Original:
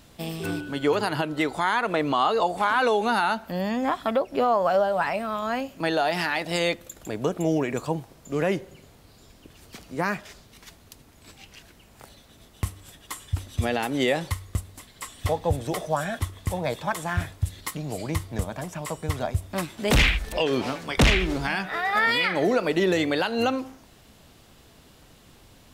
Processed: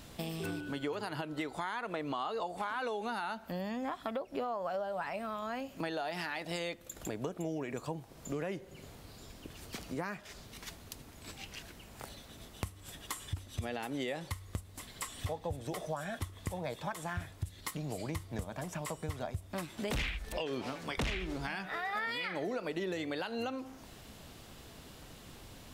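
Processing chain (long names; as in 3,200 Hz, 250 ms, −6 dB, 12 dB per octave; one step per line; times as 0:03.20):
downward compressor 4 to 1, threshold −38 dBFS, peak gain reduction 18.5 dB
level +1 dB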